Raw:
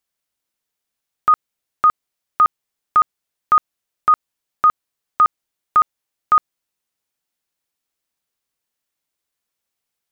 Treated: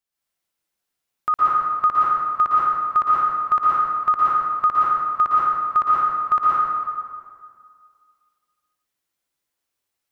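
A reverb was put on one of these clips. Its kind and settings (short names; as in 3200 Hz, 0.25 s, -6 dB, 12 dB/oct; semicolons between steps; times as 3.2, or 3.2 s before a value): plate-style reverb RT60 2 s, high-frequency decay 0.65×, pre-delay 0.105 s, DRR -8 dB; gain -7.5 dB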